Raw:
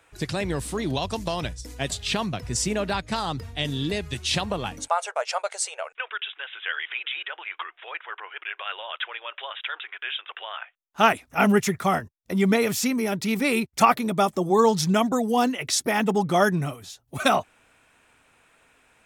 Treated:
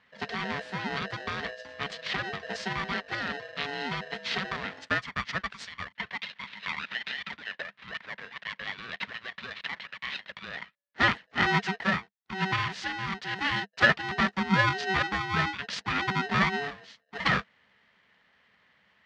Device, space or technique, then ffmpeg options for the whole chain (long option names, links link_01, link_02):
ring modulator pedal into a guitar cabinet: -filter_complex "[0:a]asettb=1/sr,asplit=3[link_01][link_02][link_03];[link_01]atrim=end=11.844[link_04];[link_02]atrim=start=11.84:end=13.39,asetpts=PTS-STARTPTS,afade=type=in:duration=0.004:curve=qsin,afade=type=out:start_time=1.546:duration=0.004:curve=qsin,highpass=250[link_05];[link_03]atrim=start=13.386[link_06];[link_04][link_05]acrossfade=duration=0.004:curve1=hsin:curve2=qsin[link_07];[link_07][link_06]acrossfade=duration=0.004:curve1=qsin:curve2=hsin,aeval=exprs='val(0)*sgn(sin(2*PI*570*n/s))':channel_layout=same,highpass=76,equalizer=frequency=100:width_type=q:width=4:gain=-4,equalizer=frequency=200:width_type=q:width=4:gain=8,equalizer=frequency=330:width_type=q:width=4:gain=-10,equalizer=frequency=800:width_type=q:width=4:gain=-4,equalizer=frequency=1800:width_type=q:width=4:gain=8,lowpass=frequency=4500:width=0.5412,lowpass=frequency=4500:width=1.3066,volume=-6dB"